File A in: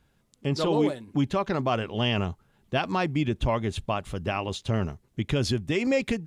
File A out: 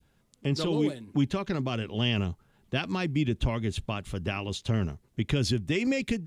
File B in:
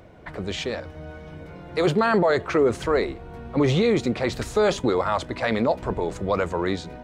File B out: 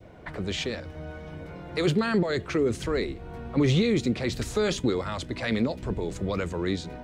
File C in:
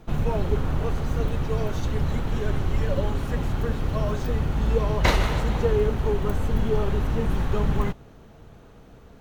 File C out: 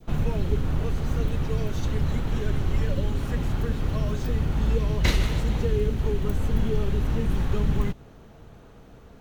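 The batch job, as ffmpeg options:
ffmpeg -i in.wav -filter_complex "[0:a]adynamicequalizer=threshold=0.0158:dfrequency=1300:dqfactor=0.71:tfrequency=1300:tqfactor=0.71:attack=5:release=100:ratio=0.375:range=3:mode=cutabove:tftype=bell,acrossover=split=420|1400[link_01][link_02][link_03];[link_02]acompressor=threshold=-41dB:ratio=6[link_04];[link_01][link_04][link_03]amix=inputs=3:normalize=0" out.wav

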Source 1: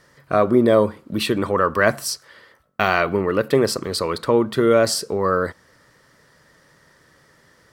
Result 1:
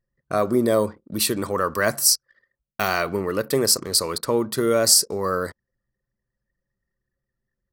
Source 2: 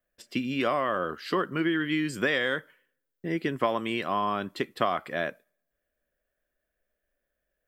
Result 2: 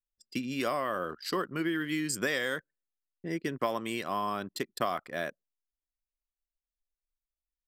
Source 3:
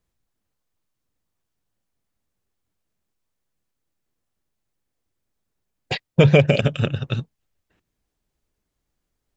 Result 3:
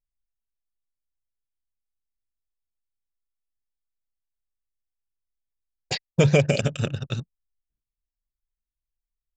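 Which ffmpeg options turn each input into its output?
ffmpeg -i in.wav -filter_complex "[0:a]anlmdn=0.398,acrossover=split=2200[link_01][link_02];[link_02]aexciter=amount=6:drive=3.4:freq=4500[link_03];[link_01][link_03]amix=inputs=2:normalize=0,volume=-4.5dB" out.wav

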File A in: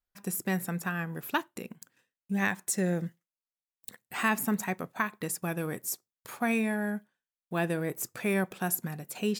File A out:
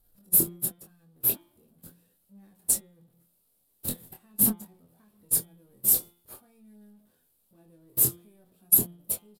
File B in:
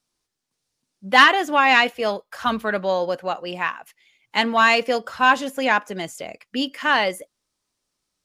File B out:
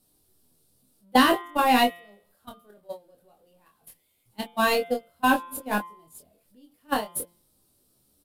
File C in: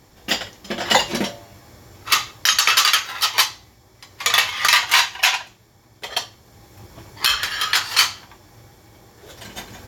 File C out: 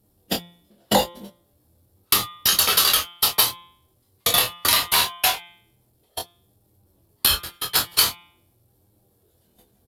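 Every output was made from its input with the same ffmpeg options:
ffmpeg -i in.wav -filter_complex "[0:a]aeval=exprs='val(0)+0.5*0.0501*sgn(val(0))':channel_layout=same,aexciter=amount=4.8:drive=8.3:freq=8700,flanger=delay=9.8:depth=5.8:regen=44:speed=0.45:shape=sinusoidal,agate=range=-43dB:threshold=-17dB:ratio=16:detection=peak,tiltshelf=frequency=1300:gain=8,asplit=2[link_01][link_02];[link_02]adelay=24,volume=-5dB[link_03];[link_01][link_03]amix=inputs=2:normalize=0,bandreject=frequency=173.3:width_type=h:width=4,bandreject=frequency=346.6:width_type=h:width=4,bandreject=frequency=519.9:width_type=h:width=4,bandreject=frequency=693.2:width_type=h:width=4,bandreject=frequency=866.5:width_type=h:width=4,bandreject=frequency=1039.8:width_type=h:width=4,bandreject=frequency=1213.1:width_type=h:width=4,bandreject=frequency=1386.4:width_type=h:width=4,bandreject=frequency=1559.7:width_type=h:width=4,bandreject=frequency=1733:width_type=h:width=4,bandreject=frequency=1906.3:width_type=h:width=4,bandreject=frequency=2079.6:width_type=h:width=4,bandreject=frequency=2252.9:width_type=h:width=4,bandreject=frequency=2426.2:width_type=h:width=4,bandreject=frequency=2599.5:width_type=h:width=4,bandreject=frequency=2772.8:width_type=h:width=4,bandreject=frequency=2946.1:width_type=h:width=4,bandreject=frequency=3119.4:width_type=h:width=4,bandreject=frequency=3292.7:width_type=h:width=4,bandreject=frequency=3466:width_type=h:width=4,bandreject=frequency=3639.3:width_type=h:width=4,bandreject=frequency=3812.6:width_type=h:width=4,acompressor=threshold=-26dB:ratio=2,equalizer=frequency=1000:width_type=o:width=1:gain=-5,equalizer=frequency=2000:width_type=o:width=1:gain=-8,equalizer=frequency=4000:width_type=o:width=1:gain=6,aresample=32000,aresample=44100,volume=8.5dB" out.wav

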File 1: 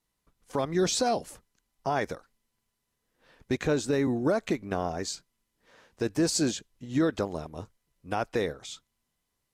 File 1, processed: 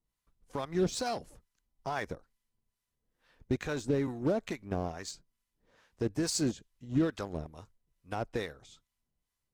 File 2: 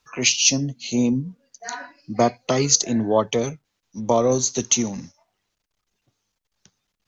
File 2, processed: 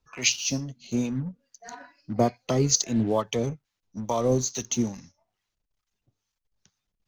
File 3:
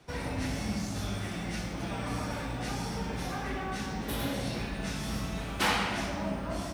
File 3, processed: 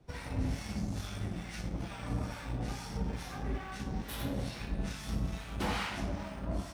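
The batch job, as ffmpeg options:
ffmpeg -i in.wav -filter_complex "[0:a]lowshelf=frequency=120:gain=10,acrossover=split=800[link_01][link_02];[link_01]aeval=exprs='val(0)*(1-0.7/2+0.7/2*cos(2*PI*2.3*n/s))':channel_layout=same[link_03];[link_02]aeval=exprs='val(0)*(1-0.7/2-0.7/2*cos(2*PI*2.3*n/s))':channel_layout=same[link_04];[link_03][link_04]amix=inputs=2:normalize=0,asplit=2[link_05][link_06];[link_06]acrusher=bits=4:mix=0:aa=0.5,volume=-10dB[link_07];[link_05][link_07]amix=inputs=2:normalize=0,volume=-5.5dB" out.wav

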